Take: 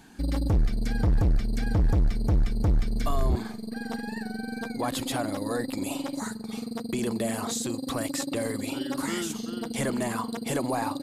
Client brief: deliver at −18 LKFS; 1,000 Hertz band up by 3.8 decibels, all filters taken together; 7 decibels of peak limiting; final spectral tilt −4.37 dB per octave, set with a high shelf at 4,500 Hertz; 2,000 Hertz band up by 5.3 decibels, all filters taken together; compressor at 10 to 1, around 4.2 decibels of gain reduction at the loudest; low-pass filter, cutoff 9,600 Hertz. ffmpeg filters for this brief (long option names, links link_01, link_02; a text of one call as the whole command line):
ffmpeg -i in.wav -af "lowpass=9600,equalizer=frequency=1000:width_type=o:gain=3.5,equalizer=frequency=2000:width_type=o:gain=4,highshelf=frequency=4500:gain=9,acompressor=threshold=-23dB:ratio=10,volume=14dB,alimiter=limit=-8.5dB:level=0:latency=1" out.wav